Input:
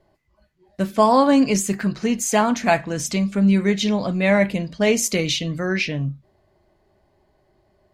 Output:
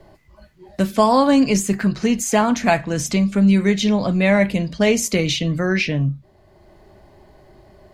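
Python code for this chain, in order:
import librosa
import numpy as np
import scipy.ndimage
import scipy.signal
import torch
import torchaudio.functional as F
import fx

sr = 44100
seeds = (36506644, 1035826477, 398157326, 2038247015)

y = fx.low_shelf(x, sr, hz=97.0, db=8.5)
y = fx.band_squash(y, sr, depth_pct=40)
y = F.gain(torch.from_numpy(y), 1.0).numpy()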